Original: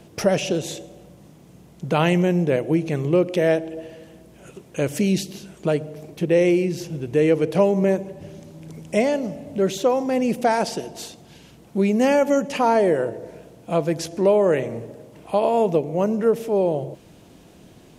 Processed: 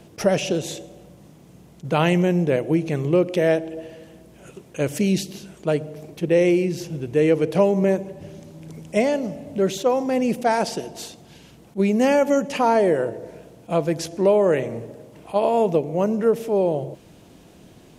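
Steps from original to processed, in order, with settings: attacks held to a fixed rise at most 470 dB/s

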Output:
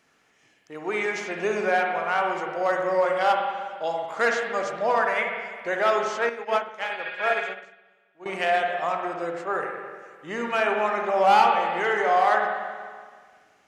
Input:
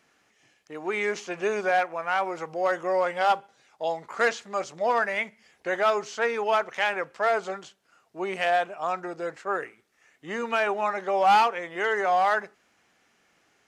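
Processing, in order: 6.94–7.51 s: spectral replace 1.4–4.9 kHz before; spring tank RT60 1.7 s, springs 47/59 ms, chirp 70 ms, DRR 1.5 dB; 6.29–8.26 s: upward expansion 2.5:1, over -33 dBFS

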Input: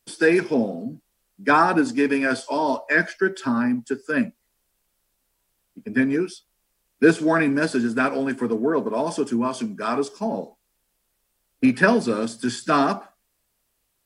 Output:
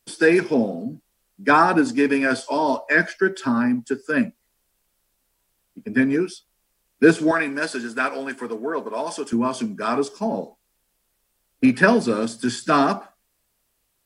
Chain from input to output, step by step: 7.31–9.33 s: high-pass 780 Hz 6 dB/octave; trim +1.5 dB

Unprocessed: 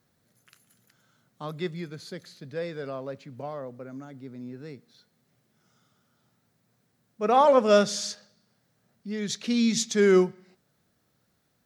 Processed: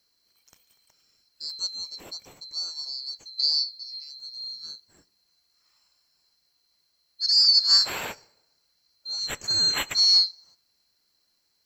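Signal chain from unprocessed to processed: split-band scrambler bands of 4 kHz; 3.39–3.63 s: time-frequency box 340–8100 Hz +12 dB; 3.60–4.73 s: doubling 19 ms -6.5 dB

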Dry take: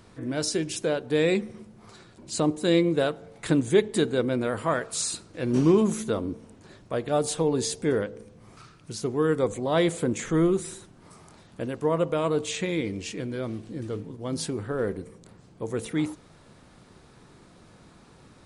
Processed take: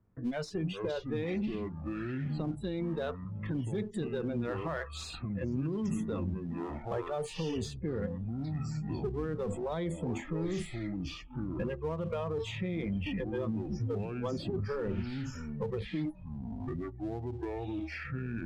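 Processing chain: spectral gate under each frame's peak -30 dB strong; level-controlled noise filter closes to 1.6 kHz, open at -19.5 dBFS; gate with hold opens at -41 dBFS; spectral noise reduction 28 dB; tone controls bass +11 dB, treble -8 dB; reverse; compression 16:1, threshold -30 dBFS, peak gain reduction 21 dB; reverse; peak limiter -29 dBFS, peak gain reduction 8.5 dB; in parallel at -7 dB: one-sided clip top -49.5 dBFS, bottom -32 dBFS; on the sum: ever faster or slower copies 281 ms, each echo -6 st, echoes 3, each echo -6 dB; three bands compressed up and down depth 70%

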